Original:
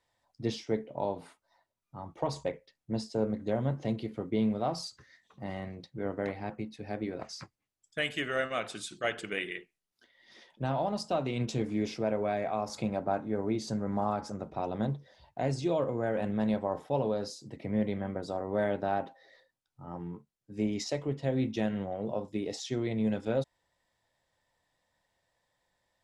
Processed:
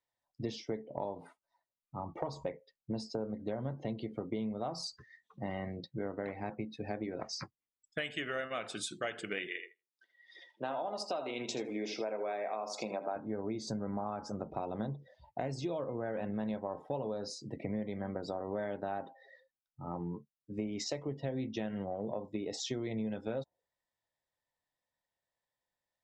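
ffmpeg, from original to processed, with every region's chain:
ffmpeg -i in.wav -filter_complex "[0:a]asettb=1/sr,asplit=3[link_01][link_02][link_03];[link_01]atrim=end=2.004[link_04];[link_02]atrim=start=2:end=2.51,asetpts=PTS-STARTPTS,afade=type=in:duration=0.004:curve=qsin,afade=type=out:start_time=0.506:duration=0.004:curve=qsin,highshelf=frequency=3400:gain=-4.5,acompressor=mode=upward:threshold=-41dB:ratio=2.5:attack=3.2:release=140:knee=2.83:detection=peak[link_05];[link_03]atrim=start=2.506[link_06];[link_04][link_05]acrossfade=duration=0.004:curve1=hsin:curve2=qsin[link_07];[link_07][link_06]acrossfade=duration=0.004:curve1=qsin:curve2=hsin,asettb=1/sr,asplit=3[link_08][link_09][link_10];[link_08]atrim=end=9.474[link_11];[link_09]atrim=start=9.47:end=13.16,asetpts=PTS-STARTPTS,afade=type=in:duration=0.004:curve=qsin,afade=type=out:start_time=3.686:duration=0.004:curve=qsin,highpass=370,aecho=1:1:80|160|240:0.335|0.0703|0.0148,atrim=end_sample=162729[link_12];[link_10]atrim=start=13.156[link_13];[link_11][link_12]acrossfade=duration=0.004:curve1=hsin:curve2=qsin[link_14];[link_14][link_13]acrossfade=duration=0.004:curve1=qsin:curve2=hsin,afftdn=noise_reduction=18:noise_floor=-53,lowshelf=frequency=120:gain=-4.5,acompressor=threshold=-38dB:ratio=6,volume=4dB" out.wav

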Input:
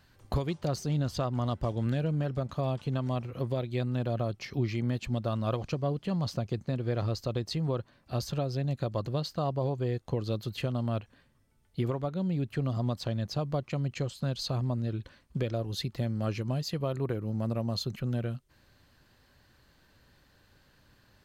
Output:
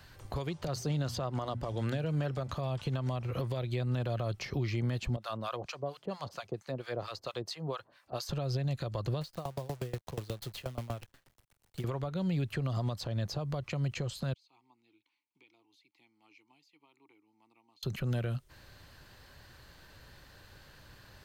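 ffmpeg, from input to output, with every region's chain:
ffmpeg -i in.wav -filter_complex "[0:a]asettb=1/sr,asplit=3[link_01][link_02][link_03];[link_01]atrim=end=0.674[link_04];[link_02]atrim=start=0.67:end=2.51,asetpts=PTS-STARTPTS,afade=type=in:duration=0.004:curve=qsin,afade=type=out:start_time=1.836:duration=0.004:curve=qsin,highpass=frequency=160:poles=1,bandreject=frequency=60:width_type=h:width=6,bandreject=frequency=120:width_type=h:width=6,bandreject=frequency=180:width_type=h:width=6,bandreject=frequency=240:width_type=h:width=6[link_05];[link_03]atrim=start=2.506[link_06];[link_04][link_05]acrossfade=duration=0.004:curve1=hsin:curve2=qsin[link_07];[link_07][link_06]acrossfade=duration=0.004:curve1=qsin:curve2=hsin,asettb=1/sr,asplit=3[link_08][link_09][link_10];[link_08]atrim=end=5.164[link_11];[link_09]atrim=start=5.16:end=8.29,asetpts=PTS-STARTPTS,afade=type=in:duration=0.004:curve=qsin,afade=type=out:start_time=3.126:duration=0.004:curve=qsin,highpass=frequency=630:poles=1,acrossover=split=850[link_12][link_13];[link_12]aeval=exprs='val(0)*(1-1/2+1/2*cos(2*PI*4.4*n/s))':channel_layout=same[link_14];[link_13]aeval=exprs='val(0)*(1-1/2-1/2*cos(2*PI*4.4*n/s))':channel_layout=same[link_15];[link_14][link_15]amix=inputs=2:normalize=0[link_16];[link_10]atrim=start=8.286[link_17];[link_11][link_16]acrossfade=duration=0.004:curve1=hsin:curve2=qsin[link_18];[link_18][link_17]acrossfade=duration=0.004:curve1=qsin:curve2=hsin,asettb=1/sr,asplit=3[link_19][link_20][link_21];[link_19]atrim=end=9.214[link_22];[link_20]atrim=start=9.21:end=11.84,asetpts=PTS-STARTPTS,afade=type=in:duration=0.004:curve=qsin,afade=type=out:start_time=2.626:duration=0.004:curve=qsin,acrusher=bits=8:dc=4:mix=0:aa=0.000001,aeval=exprs='val(0)*pow(10,-27*if(lt(mod(8.3*n/s,1),2*abs(8.3)/1000),1-mod(8.3*n/s,1)/(2*abs(8.3)/1000),(mod(8.3*n/s,1)-2*abs(8.3)/1000)/(1-2*abs(8.3)/1000))/20)':channel_layout=same[link_23];[link_21]atrim=start=11.836[link_24];[link_22][link_23]acrossfade=duration=0.004:curve1=hsin:curve2=qsin[link_25];[link_25][link_24]acrossfade=duration=0.004:curve1=qsin:curve2=hsin,asettb=1/sr,asplit=3[link_26][link_27][link_28];[link_26]atrim=end=14.334[link_29];[link_27]atrim=start=14.33:end=17.83,asetpts=PTS-STARTPTS,afade=type=in:duration=0.004:curve=qsin,afade=type=out:start_time=3.496:duration=0.004:curve=qsin,aderivative,acompressor=threshold=-47dB:ratio=4:attack=3.2:release=140:knee=1:detection=peak,asplit=3[link_30][link_31][link_32];[link_30]bandpass=frequency=300:width_type=q:width=8,volume=0dB[link_33];[link_31]bandpass=frequency=870:width_type=q:width=8,volume=-6dB[link_34];[link_32]bandpass=frequency=2240:width_type=q:width=8,volume=-9dB[link_35];[link_33][link_34][link_35]amix=inputs=3:normalize=0[link_36];[link_28]atrim=start=17.826[link_37];[link_29][link_36]acrossfade=duration=0.004:curve1=hsin:curve2=qsin[link_38];[link_38][link_37]acrossfade=duration=0.004:curve1=qsin:curve2=hsin,equalizer=frequency=240:width=1.5:gain=-6,acrossover=split=130|1100[link_39][link_40][link_41];[link_39]acompressor=threshold=-42dB:ratio=4[link_42];[link_40]acompressor=threshold=-39dB:ratio=4[link_43];[link_41]acompressor=threshold=-49dB:ratio=4[link_44];[link_42][link_43][link_44]amix=inputs=3:normalize=0,alimiter=level_in=8.5dB:limit=-24dB:level=0:latency=1:release=131,volume=-8.5dB,volume=8dB" out.wav

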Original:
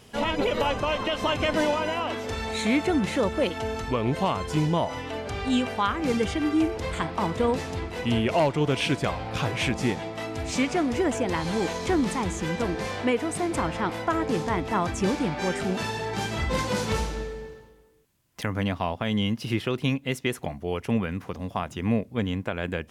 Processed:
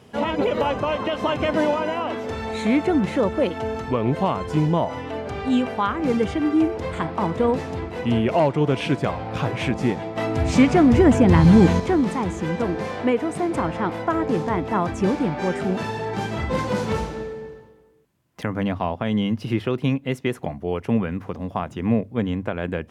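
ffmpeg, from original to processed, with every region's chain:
ffmpeg -i in.wav -filter_complex "[0:a]asettb=1/sr,asplit=3[link_01][link_02][link_03];[link_01]atrim=end=10.164[link_04];[link_02]atrim=start=10.16:end=11.8,asetpts=PTS-STARTPTS,afade=type=in:duration=0.004:curve=qsin,afade=type=out:start_time=1.636:duration=0.004:curve=qsin,asubboost=boost=10:cutoff=220,acontrast=44[link_05];[link_03]atrim=start=11.796[link_06];[link_04][link_05]acrossfade=duration=0.004:curve1=hsin:curve2=qsin[link_07];[link_07][link_06]acrossfade=duration=0.004:curve1=qsin:curve2=hsin,highpass=77,highshelf=frequency=2300:gain=-11.5,bandreject=frequency=50:width_type=h:width=6,bandreject=frequency=100:width_type=h:width=6,volume=4.5dB" out.wav

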